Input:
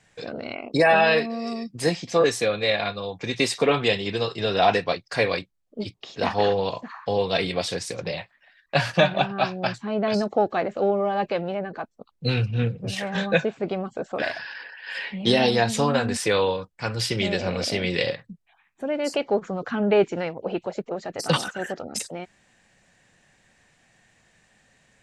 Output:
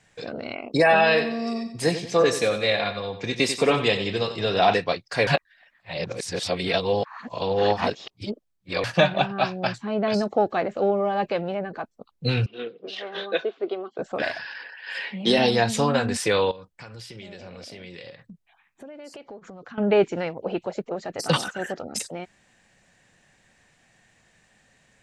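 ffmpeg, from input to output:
ffmpeg -i in.wav -filter_complex "[0:a]asettb=1/sr,asplit=3[link_01][link_02][link_03];[link_01]atrim=end=1.054[link_04];[link_02]atrim=start=1.05:end=4.74,asetpts=PTS-STARTPTS,afade=type=in:duration=0.004:curve=qsin,afade=type=out:start_time=3.686:duration=0.004:curve=qsin,aecho=1:1:91|182|273|364:0.282|0.113|0.0451|0.018,atrim=end_sample=162729[link_05];[link_03]atrim=start=4.736[link_06];[link_04][link_05]acrossfade=duration=0.004:curve1=hsin:curve2=qsin[link_07];[link_07][link_06]acrossfade=duration=0.004:curve1=qsin:curve2=hsin,asettb=1/sr,asplit=3[link_08][link_09][link_10];[link_08]atrim=end=12.464[link_11];[link_09]atrim=start=12.46:end=13.99,asetpts=PTS-STARTPTS,afade=type=in:duration=0.004:curve=qsin,afade=type=out:start_time=1.526:duration=0.004:curve=qsin,highpass=frequency=350:width=0.5412,highpass=frequency=350:width=1.3066,equalizer=frequency=370:width_type=q:width=4:gain=5,equalizer=frequency=560:width_type=q:width=4:gain=-6,equalizer=frequency=870:width_type=q:width=4:gain=-9,equalizer=frequency=1700:width_type=q:width=4:gain=-7,equalizer=frequency=2400:width_type=q:width=4:gain=-8,equalizer=frequency=3400:width_type=q:width=4:gain=3,lowpass=frequency=4100:width=0.5412,lowpass=frequency=4100:width=1.3066[link_12];[link_10]atrim=start=13.986[link_13];[link_11][link_12]acrossfade=duration=0.004:curve1=hsin:curve2=qsin[link_14];[link_14][link_13]acrossfade=duration=0.004:curve1=qsin:curve2=hsin,asettb=1/sr,asplit=3[link_15][link_16][link_17];[link_15]atrim=end=14.684[link_18];[link_16]atrim=start=14.68:end=15.38,asetpts=PTS-STARTPTS,afade=type=in:duration=0.004:curve=qsin,afade=type=out:start_time=0.696:duration=0.004:curve=qsin,highpass=frequency=160:width=0.5412,highpass=frequency=160:width=1.3066[link_19];[link_17]atrim=start=15.376[link_20];[link_18][link_19]acrossfade=duration=0.004:curve1=hsin:curve2=qsin[link_21];[link_21][link_20]acrossfade=duration=0.004:curve1=qsin:curve2=hsin,asettb=1/sr,asplit=3[link_22][link_23][link_24];[link_22]atrim=end=16.514[link_25];[link_23]atrim=start=16.51:end=19.78,asetpts=PTS-STARTPTS,afade=type=in:duration=0.004:curve=qsin,afade=type=out:start_time=3.266:duration=0.004:curve=qsin,acompressor=threshold=-39dB:ratio=6:attack=3.2:release=140:knee=1:detection=peak[link_26];[link_24]atrim=start=19.776[link_27];[link_25][link_26]acrossfade=duration=0.004:curve1=hsin:curve2=qsin[link_28];[link_28][link_27]acrossfade=duration=0.004:curve1=qsin:curve2=hsin,asplit=3[link_29][link_30][link_31];[link_29]atrim=end=5.272[link_32];[link_30]atrim=start=5.268:end=8.842,asetpts=PTS-STARTPTS,areverse[link_33];[link_31]atrim=start=8.838[link_34];[link_32][link_33]acrossfade=duration=0.004:curve1=hsin:curve2=hsin[link_35];[link_35][link_34]acrossfade=duration=0.004:curve1=hsin:curve2=hsin" out.wav

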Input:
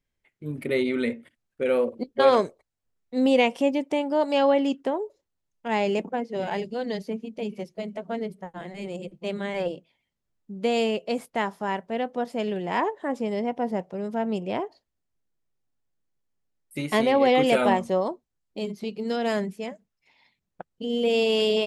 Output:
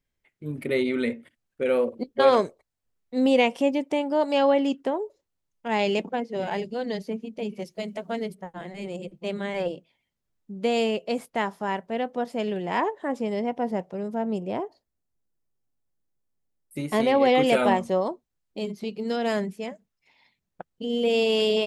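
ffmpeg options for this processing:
ffmpeg -i in.wav -filter_complex "[0:a]asettb=1/sr,asplit=3[link_01][link_02][link_03];[link_01]atrim=end=5.794[link_04];[link_02]atrim=start=5.79:end=6.2,asetpts=PTS-STARTPTS,afade=type=in:duration=0.004:curve=qsin,afade=type=out:start_time=0.406:duration=0.004:curve=qsin,equalizer=frequency=3700:width=1.2:gain=7.5[link_05];[link_03]atrim=start=6.196[link_06];[link_04][link_05]acrossfade=duration=0.004:curve1=hsin:curve2=qsin[link_07];[link_07][link_06]acrossfade=duration=0.004:curve1=qsin:curve2=hsin,asettb=1/sr,asplit=3[link_08][link_09][link_10];[link_08]atrim=end=7.624[link_11];[link_09]atrim=start=7.62:end=8.35,asetpts=PTS-STARTPTS,afade=type=in:duration=0.004:curve=qsin,afade=type=out:start_time=0.726:duration=0.004:curve=qsin,highshelf=frequency=2500:gain=8.5[link_12];[link_10]atrim=start=8.346[link_13];[link_11][link_12]acrossfade=duration=0.004:curve1=hsin:curve2=qsin[link_14];[link_14][link_13]acrossfade=duration=0.004:curve1=qsin:curve2=hsin,asettb=1/sr,asplit=3[link_15][link_16][link_17];[link_15]atrim=end=14.034[link_18];[link_16]atrim=start=14.03:end=17,asetpts=PTS-STARTPTS,afade=type=in:duration=0.004:curve=qsin,afade=type=out:start_time=2.966:duration=0.004:curve=qsin,equalizer=frequency=2800:width=0.55:gain=-6.5[link_19];[link_17]atrim=start=16.996[link_20];[link_18][link_19]acrossfade=duration=0.004:curve1=hsin:curve2=qsin[link_21];[link_21][link_20]acrossfade=duration=0.004:curve1=qsin:curve2=hsin" out.wav

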